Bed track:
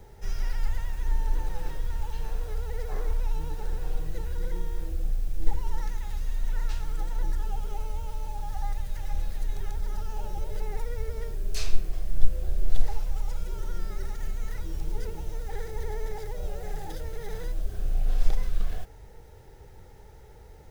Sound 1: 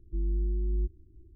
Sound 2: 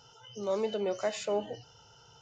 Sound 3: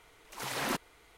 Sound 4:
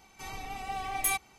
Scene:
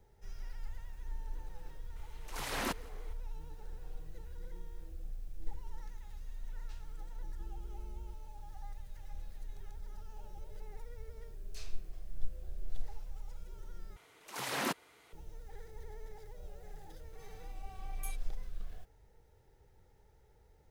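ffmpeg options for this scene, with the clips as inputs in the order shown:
-filter_complex "[3:a]asplit=2[a][b];[0:a]volume=-15.5dB[c];[a]aecho=1:1:168:0.0631[d];[1:a]acompressor=threshold=-32dB:ratio=6:attack=3.2:release=140:knee=1:detection=peak[e];[b]highpass=110[f];[4:a]acrossover=split=2000[g][h];[h]adelay=50[i];[g][i]amix=inputs=2:normalize=0[j];[c]asplit=2[k][l];[k]atrim=end=13.964[m];[f]atrim=end=1.17,asetpts=PTS-STARTPTS,volume=-1.5dB[n];[l]atrim=start=15.126[o];[d]atrim=end=1.17,asetpts=PTS-STARTPTS,volume=-3dB,afade=t=in:d=0.004:c=hsin,afade=t=out:st=1.166:d=0.004:c=hsin,adelay=1960[p];[e]atrim=end=1.35,asetpts=PTS-STARTPTS,volume=-11.5dB,afade=t=in:d=0.004:c=hsin,afade=t=out:st=1.346:d=0.004:c=hsin,adelay=7270[q];[j]atrim=end=1.38,asetpts=PTS-STARTPTS,volume=-18dB,afade=t=in:d=0.004:c=hsin,afade=t=out:st=1.376:d=0.004:c=hsin,adelay=16940[r];[m][n]acrossfade=d=0.004:c1=hsin:c2=hsin[s];[s][o]acrossfade=d=0.004:c1=hsin:c2=hsin[t];[t][p][q][r]amix=inputs=4:normalize=0"

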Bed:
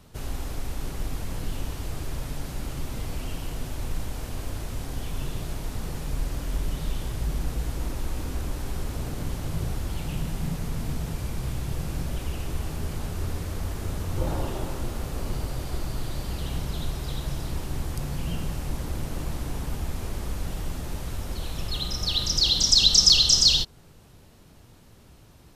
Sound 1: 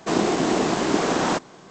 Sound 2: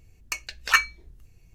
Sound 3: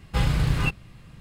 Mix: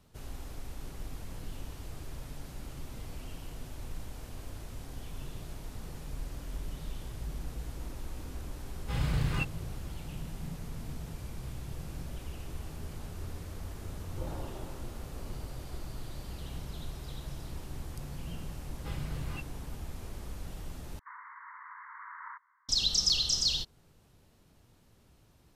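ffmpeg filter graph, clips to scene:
-filter_complex "[3:a]asplit=2[a][b];[0:a]volume=-10.5dB[c];[a]dynaudnorm=f=150:g=3:m=12.5dB[d];[1:a]asuperpass=centerf=1400:order=20:qfactor=1.2[e];[c]asplit=2[f][g];[f]atrim=end=20.994[h];[e]atrim=end=1.7,asetpts=PTS-STARTPTS,volume=-16dB[i];[g]atrim=start=22.686[j];[d]atrim=end=1.2,asetpts=PTS-STARTPTS,volume=-16.5dB,afade=t=in:d=0.004:c=hsin,afade=t=out:st=1.196:d=0.004:c=hsin,adelay=385434S[k];[b]atrim=end=1.2,asetpts=PTS-STARTPTS,volume=-17dB,afade=t=in:d=0.004:c=hsin,afade=t=out:st=1.196:d=0.004:c=hsin,adelay=18710[l];[h][i]acrossfade=d=0.004:c1=hsin:c2=hsin[m];[m][j]acrossfade=d=0.004:c1=hsin:c2=hsin[n];[n][k][l]amix=inputs=3:normalize=0"

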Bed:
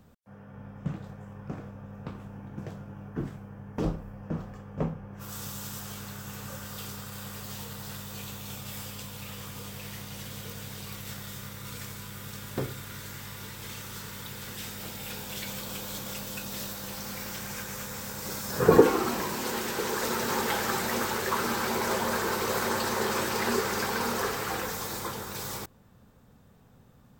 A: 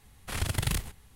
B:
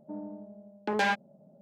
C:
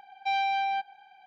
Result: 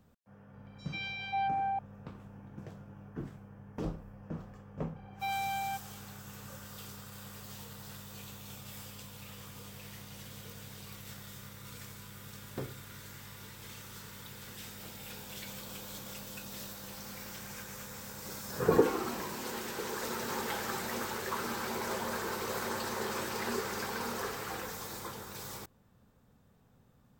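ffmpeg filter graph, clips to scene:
-filter_complex "[3:a]asplit=2[a][b];[0:a]volume=-7.5dB[c];[a]acrossover=split=1600|5300[d][e][f];[e]adelay=140[g];[d]adelay=540[h];[h][g][f]amix=inputs=3:normalize=0,atrim=end=1.26,asetpts=PTS-STARTPTS,volume=-3.5dB,afade=t=in:d=0.004:c=hsin,afade=t=out:st=1.256:d=0.004:c=hsin,adelay=530[i];[b]atrim=end=1.26,asetpts=PTS-STARTPTS,volume=-7.5dB,afade=t=in:d=0.004:c=hsin,afade=t=out:st=1.256:d=0.004:c=hsin,adelay=4960[j];[c][i][j]amix=inputs=3:normalize=0"

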